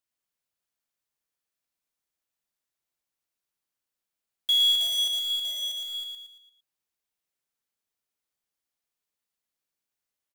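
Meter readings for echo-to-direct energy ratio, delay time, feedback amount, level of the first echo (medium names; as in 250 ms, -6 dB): -3.0 dB, 114 ms, 42%, -4.0 dB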